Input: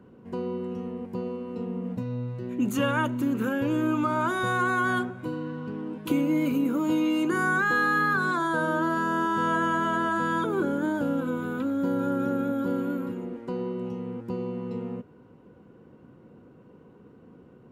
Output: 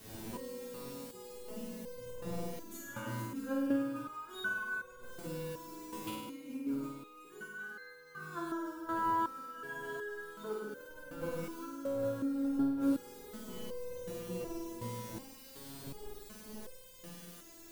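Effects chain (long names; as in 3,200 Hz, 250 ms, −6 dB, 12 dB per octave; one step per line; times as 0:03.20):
wind on the microphone 370 Hz −37 dBFS
in parallel at −9 dB: bit-depth reduction 6 bits, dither triangular
on the sum: compressor whose output falls as the input rises −26 dBFS, ratio −0.5
on a send: flutter between parallel walls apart 8.7 metres, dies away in 1.1 s
on the sum: step-sequenced resonator 2.7 Hz 110–520 Hz
level −3 dB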